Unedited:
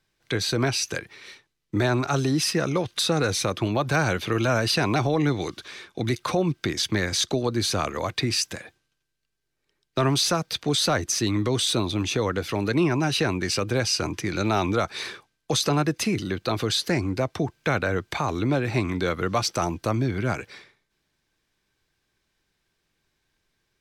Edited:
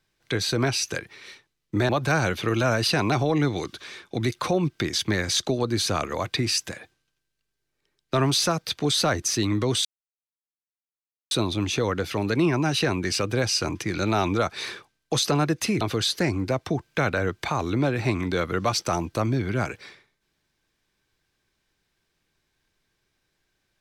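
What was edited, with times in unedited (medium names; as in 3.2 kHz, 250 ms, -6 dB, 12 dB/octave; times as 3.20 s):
1.89–3.73 s: delete
11.69 s: insert silence 1.46 s
16.19–16.50 s: delete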